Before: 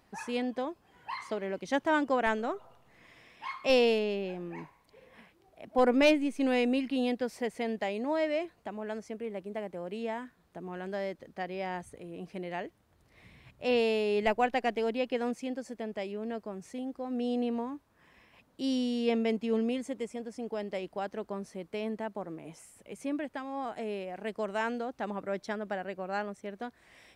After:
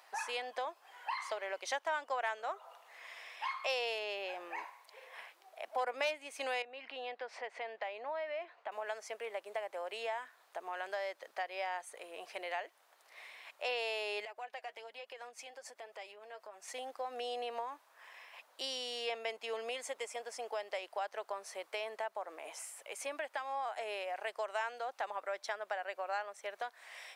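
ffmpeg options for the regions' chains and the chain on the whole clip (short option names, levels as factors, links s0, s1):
-filter_complex "[0:a]asettb=1/sr,asplit=3[s0][s1][s2];[s0]atrim=end=6.624[s3];[s1]atrim=start=6.62:end=8.72,asetpts=PTS-STARTPTS,afade=t=in:d=0.004:c=qsin,afade=t=out:st=2.096:d=0.004:c=qsin,lowpass=2800,acompressor=threshold=0.00708:ratio=2:attack=3.2:release=140:knee=1:detection=peak[s4];[s2]atrim=start=8.716[s5];[s3][s4]acrossfade=d=0.004:c1=hsin:c2=qsin[s6];[s6][s5]acrossfade=d=0.004:c1=qsin:c2=hsin,asettb=1/sr,asplit=3[s7][s8][s9];[s7]atrim=end=14.254[s10];[s8]atrim=start=14.25:end=16.68,asetpts=PTS-STARTPTS,afade=t=in:d=0.004:c=qsin,afade=t=out:st=2.426:d=0.004:c=qsin,flanger=delay=1.4:depth=5.5:regen=42:speed=1.2:shape=triangular,acompressor=threshold=0.00562:ratio=12:attack=3.2:release=140:knee=1:detection=peak[s11];[s9]atrim=start=16.676[s12];[s10][s11]acrossfade=d=0.004:c1=hsin:c2=qsin[s13];[s13][s12]acrossfade=d=0.004:c1=qsin:c2=hsin,highpass=f=630:w=0.5412,highpass=f=630:w=1.3066,acompressor=threshold=0.00562:ratio=3,volume=2.37"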